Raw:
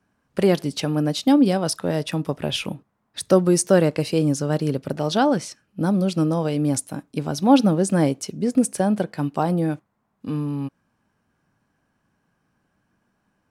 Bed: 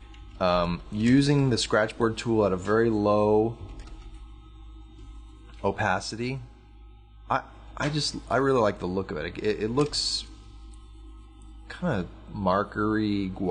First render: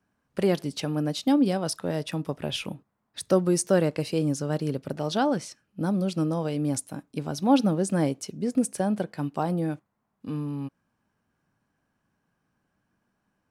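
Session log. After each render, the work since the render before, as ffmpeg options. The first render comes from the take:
ffmpeg -i in.wav -af "volume=-5.5dB" out.wav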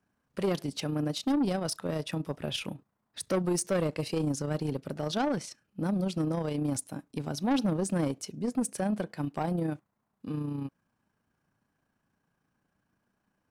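ffmpeg -i in.wav -af "tremolo=f=29:d=0.462,asoftclip=type=tanh:threshold=-22dB" out.wav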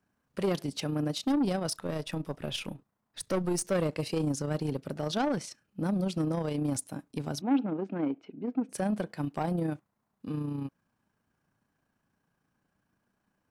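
ffmpeg -i in.wav -filter_complex "[0:a]asettb=1/sr,asplit=3[link_01][link_02][link_03];[link_01]atrim=end=1.754[link_04];[link_02]atrim=start=1.75:end=3.71,asetpts=PTS-STARTPTS,afade=type=in:duration=0.004:curve=qsin,afade=type=out:start_time=1.956:duration=0.004:curve=qsin,aeval=exprs='if(lt(val(0),0),0.708*val(0),val(0))':channel_layout=same[link_05];[link_03]atrim=start=3.706[link_06];[link_04][link_05]acrossfade=duration=0.004:curve1=hsin:curve2=qsin[link_07];[link_07][link_06]acrossfade=duration=0.004:curve1=qsin:curve2=hsin,asplit=3[link_08][link_09][link_10];[link_08]afade=type=out:start_time=7.4:duration=0.02[link_11];[link_09]highpass=280,equalizer=frequency=280:width_type=q:width=4:gain=6,equalizer=frequency=550:width_type=q:width=4:gain=-7,equalizer=frequency=1100:width_type=q:width=4:gain=-6,equalizer=frequency=1800:width_type=q:width=4:gain=-8,lowpass=frequency=2400:width=0.5412,lowpass=frequency=2400:width=1.3066,afade=type=in:start_time=7.4:duration=0.02,afade=type=out:start_time=8.69:duration=0.02[link_12];[link_10]afade=type=in:start_time=8.69:duration=0.02[link_13];[link_11][link_12][link_13]amix=inputs=3:normalize=0" out.wav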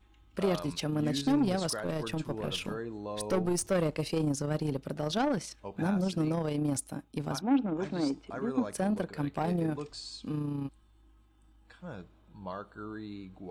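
ffmpeg -i in.wav -i bed.wav -filter_complex "[1:a]volume=-16dB[link_01];[0:a][link_01]amix=inputs=2:normalize=0" out.wav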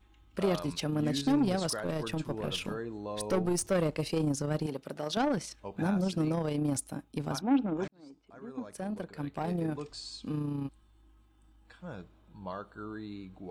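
ffmpeg -i in.wav -filter_complex "[0:a]asettb=1/sr,asplit=3[link_01][link_02][link_03];[link_01]atrim=end=4.664[link_04];[link_02]atrim=start=4.66:end=5.17,asetpts=PTS-STARTPTS,afade=type=in:duration=0.004:curve=qsin,afade=type=out:start_time=0.506:duration=0.004:curve=qsin,highpass=frequency=360:poles=1[link_05];[link_03]atrim=start=5.166[link_06];[link_04][link_05]acrossfade=duration=0.004:curve1=hsin:curve2=qsin[link_07];[link_07][link_06]acrossfade=duration=0.004:curve1=qsin:curve2=hsin,asplit=2[link_08][link_09];[link_08]atrim=end=7.88,asetpts=PTS-STARTPTS,afade=type=out:start_time=7.876:duration=0.004:curve=hsin[link_10];[link_09]atrim=start=7.88,asetpts=PTS-STARTPTS,afade=type=in:duration=2.17[link_11];[link_10][link_11]concat=n=2:v=0:a=1" out.wav

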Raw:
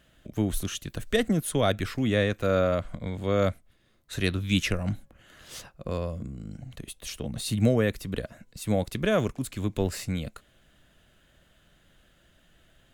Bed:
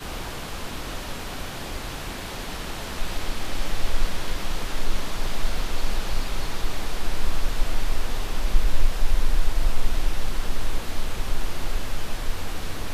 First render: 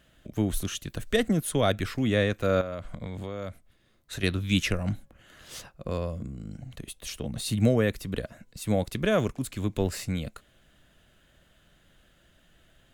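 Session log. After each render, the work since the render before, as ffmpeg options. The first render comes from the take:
ffmpeg -i in.wav -filter_complex "[0:a]asettb=1/sr,asplit=3[link_01][link_02][link_03];[link_01]atrim=end=2.614[link_04];[link_02]atrim=start=2.61:end=4.23,asetpts=PTS-STARTPTS,afade=type=in:duration=0.004:curve=qsin,afade=type=out:start_time=1.616:duration=0.004:curve=qsin,acompressor=threshold=-30dB:ratio=10:attack=3.2:release=140:knee=1:detection=peak[link_05];[link_03]atrim=start=4.226[link_06];[link_04][link_05]acrossfade=duration=0.004:curve1=hsin:curve2=qsin[link_07];[link_07][link_06]acrossfade=duration=0.004:curve1=qsin:curve2=hsin" out.wav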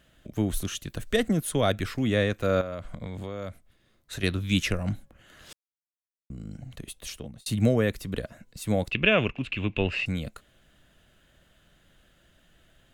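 ffmpeg -i in.wav -filter_complex "[0:a]asettb=1/sr,asplit=3[link_01][link_02][link_03];[link_01]atrim=end=8.914[link_04];[link_02]atrim=start=8.91:end=10.06,asetpts=PTS-STARTPTS,afade=type=in:duration=0.004:curve=qsin,afade=type=out:start_time=1.146:duration=0.004:curve=qsin,lowpass=frequency=2700:width_type=q:width=13[link_05];[link_03]atrim=start=10.056[link_06];[link_04][link_05]acrossfade=duration=0.004:curve1=hsin:curve2=qsin[link_07];[link_07][link_06]acrossfade=duration=0.004:curve1=qsin:curve2=hsin,asplit=4[link_08][link_09][link_10][link_11];[link_08]atrim=end=5.53,asetpts=PTS-STARTPTS,afade=type=out:start_time=5.526:duration=0.004:curve=hsin[link_12];[link_09]atrim=start=5.53:end=6.3,asetpts=PTS-STARTPTS,volume=0[link_13];[link_10]atrim=start=6.3:end=7.46,asetpts=PTS-STARTPTS,afade=type=in:duration=0.004:curve=hsin,afade=type=out:start_time=0.75:duration=0.41[link_14];[link_11]atrim=start=7.46,asetpts=PTS-STARTPTS,afade=type=in:duration=0.004:curve=hsin[link_15];[link_12][link_13][link_14][link_15]concat=n=4:v=0:a=1" out.wav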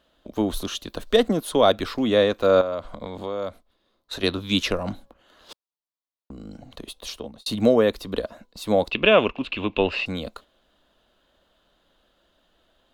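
ffmpeg -i in.wav -af "agate=range=-7dB:threshold=-49dB:ratio=16:detection=peak,equalizer=frequency=125:width_type=o:width=1:gain=-11,equalizer=frequency=250:width_type=o:width=1:gain=5,equalizer=frequency=500:width_type=o:width=1:gain=6,equalizer=frequency=1000:width_type=o:width=1:gain=11,equalizer=frequency=2000:width_type=o:width=1:gain=-5,equalizer=frequency=4000:width_type=o:width=1:gain=10,equalizer=frequency=8000:width_type=o:width=1:gain=-5" out.wav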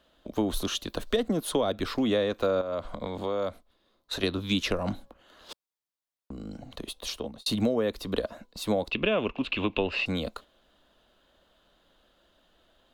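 ffmpeg -i in.wav -filter_complex "[0:a]acrossover=split=390[link_01][link_02];[link_02]alimiter=limit=-13dB:level=0:latency=1:release=309[link_03];[link_01][link_03]amix=inputs=2:normalize=0,acompressor=threshold=-23dB:ratio=4" out.wav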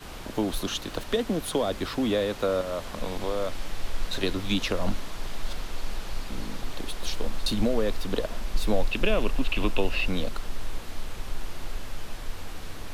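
ffmpeg -i in.wav -i bed.wav -filter_complex "[1:a]volume=-7.5dB[link_01];[0:a][link_01]amix=inputs=2:normalize=0" out.wav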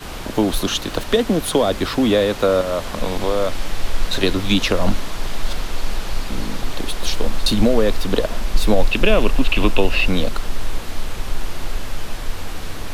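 ffmpeg -i in.wav -af "volume=9.5dB,alimiter=limit=-2dB:level=0:latency=1" out.wav

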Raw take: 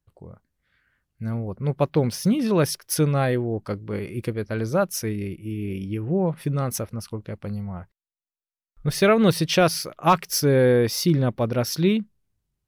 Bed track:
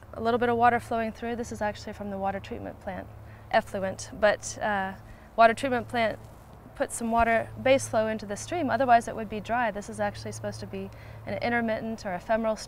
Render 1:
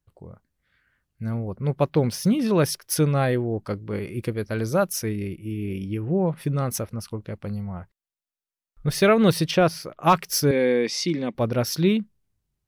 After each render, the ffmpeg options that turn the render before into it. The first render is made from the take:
ffmpeg -i in.wav -filter_complex "[0:a]asettb=1/sr,asplit=3[link_01][link_02][link_03];[link_01]atrim=end=4.324[link_04];[link_02]atrim=start=4.32:end=4.93,asetpts=PTS-STARTPTS,afade=type=in:duration=0.004:curve=qsin,afade=type=out:start_time=0.606:duration=0.004:curve=qsin,highshelf=frequency=5800:gain=7.5[link_05];[link_03]atrim=start=4.926[link_06];[link_04][link_05]acrossfade=duration=0.004:curve1=hsin:curve2=qsin[link_07];[link_07][link_06]acrossfade=duration=0.004:curve1=qsin:curve2=hsin,asettb=1/sr,asplit=3[link_08][link_09][link_10];[link_08]atrim=end=9.514[link_11];[link_09]atrim=start=9.51:end=10,asetpts=PTS-STARTPTS,afade=type=in:duration=0.004:curve=qsin,afade=type=out:start_time=0.486:duration=0.004:curve=qsin,highshelf=frequency=2800:gain=-10.5[link_12];[link_10]atrim=start=9.996[link_13];[link_11][link_12]acrossfade=duration=0.004:curve1=hsin:curve2=qsin[link_14];[link_14][link_13]acrossfade=duration=0.004:curve1=qsin:curve2=hsin,asettb=1/sr,asplit=3[link_15][link_16][link_17];[link_15]atrim=end=10.514[link_18];[link_16]atrim=start=10.51:end=11.35,asetpts=PTS-STARTPTS,afade=type=in:duration=0.004:curve=qsin,afade=type=out:start_time=0.836:duration=0.004:curve=qsin,highpass=frequency=210:width=0.5412,highpass=frequency=210:width=1.3066,equalizer=frequency=380:width_type=q:width=4:gain=-4,equalizer=frequency=640:width_type=q:width=4:gain=-8,equalizer=frequency=980:width_type=q:width=4:gain=-3,equalizer=frequency=1400:width_type=q:width=4:gain=-10,equalizer=frequency=2200:width_type=q:width=4:gain=7,lowpass=frequency=8100:width=0.5412,lowpass=frequency=8100:width=1.3066[link_19];[link_17]atrim=start=11.346[link_20];[link_18][link_19]acrossfade=duration=0.004:curve1=hsin:curve2=qsin[link_21];[link_21][link_20]acrossfade=duration=0.004:curve1=qsin:curve2=hsin" out.wav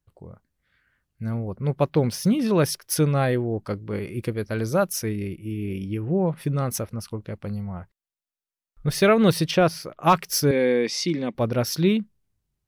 ffmpeg -i in.wav -af anull out.wav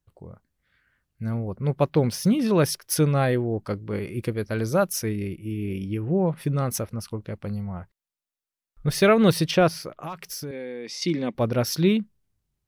ffmpeg -i in.wav -filter_complex "[0:a]asettb=1/sr,asplit=3[link_01][link_02][link_03];[link_01]atrim=end=10.034[link_04];[link_02]atrim=start=10.03:end=11.02,asetpts=PTS-STARTPTS,afade=type=in:duration=0.004:curve=qsin,afade=type=out:start_time=0.986:duration=0.004:curve=qsin,acompressor=threshold=-32dB:ratio=6:attack=3.2:release=140:knee=1:detection=peak[link_05];[link_03]atrim=start=11.016[link_06];[link_04][link_05]acrossfade=duration=0.004:curve1=hsin:curve2=qsin[link_07];[link_07][link_06]acrossfade=duration=0.004:curve1=qsin:curve2=hsin" out.wav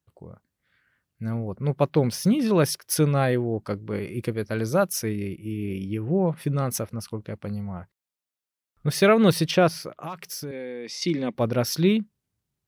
ffmpeg -i in.wav -af "highpass=87" out.wav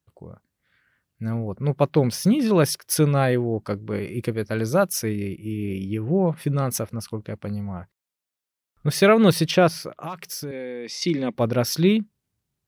ffmpeg -i in.wav -af "volume=2dB" out.wav

